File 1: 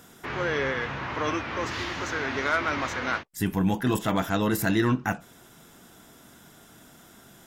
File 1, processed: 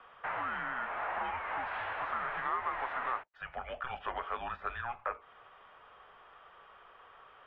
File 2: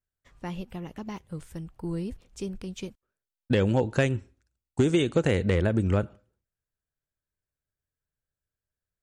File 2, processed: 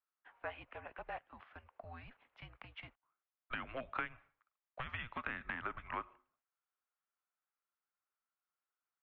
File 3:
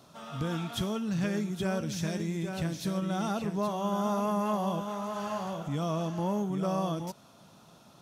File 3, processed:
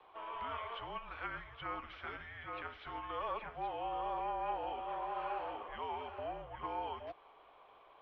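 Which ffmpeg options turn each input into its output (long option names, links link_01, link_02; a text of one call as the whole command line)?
ffmpeg -i in.wav -filter_complex "[0:a]acrossover=split=290|1300[link_01][link_02][link_03];[link_01]acompressor=threshold=-29dB:ratio=4[link_04];[link_02]acompressor=threshold=-37dB:ratio=4[link_05];[link_03]acompressor=threshold=-40dB:ratio=4[link_06];[link_04][link_05][link_06]amix=inputs=3:normalize=0,highpass=frequency=220:width_type=q:width=0.5412,highpass=frequency=220:width_type=q:width=1.307,lowpass=frequency=3600:width_type=q:width=0.5176,lowpass=frequency=3600:width_type=q:width=0.7071,lowpass=frequency=3600:width_type=q:width=1.932,afreqshift=-250,acrossover=split=590 2100:gain=0.0708 1 0.2[link_07][link_08][link_09];[link_07][link_08][link_09]amix=inputs=3:normalize=0,volume=4dB" out.wav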